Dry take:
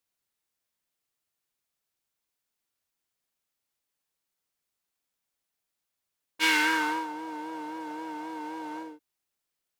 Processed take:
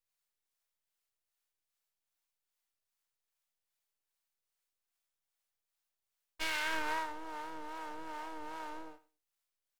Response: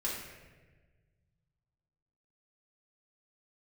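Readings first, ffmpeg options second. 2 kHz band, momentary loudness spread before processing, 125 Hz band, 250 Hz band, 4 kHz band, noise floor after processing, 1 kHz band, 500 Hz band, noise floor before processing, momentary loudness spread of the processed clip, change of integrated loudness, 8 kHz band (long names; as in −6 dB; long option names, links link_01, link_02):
−10.5 dB, 15 LU, can't be measured, −14.0 dB, −10.5 dB, below −85 dBFS, −7.5 dB, −6.0 dB, −85 dBFS, 11 LU, −10.0 dB, −10.0 dB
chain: -filter_complex "[0:a]aeval=exprs='if(lt(val(0),0),0.251*val(0),val(0))':channel_layout=same,asplit=2[link_01][link_02];[link_02]aecho=0:1:107|214:0.106|0.0169[link_03];[link_01][link_03]amix=inputs=2:normalize=0,acrossover=split=520[link_04][link_05];[link_04]aeval=exprs='val(0)*(1-0.5/2+0.5/2*cos(2*PI*2.5*n/s))':channel_layout=same[link_06];[link_05]aeval=exprs='val(0)*(1-0.5/2-0.5/2*cos(2*PI*2.5*n/s))':channel_layout=same[link_07];[link_06][link_07]amix=inputs=2:normalize=0,alimiter=level_in=1.5dB:limit=-24dB:level=0:latency=1:release=92,volume=-1.5dB,equalizer=frequency=210:width=1.1:gain=-13.5,volume=1dB"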